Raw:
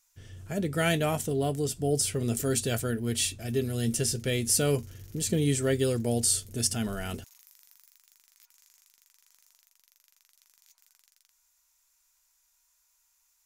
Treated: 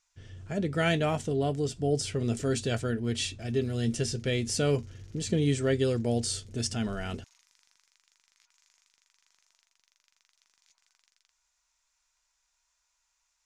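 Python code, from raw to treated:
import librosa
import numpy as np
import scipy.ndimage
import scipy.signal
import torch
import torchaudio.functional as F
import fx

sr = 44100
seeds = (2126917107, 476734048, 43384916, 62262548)

y = scipy.signal.sosfilt(scipy.signal.bessel(4, 5300.0, 'lowpass', norm='mag', fs=sr, output='sos'), x)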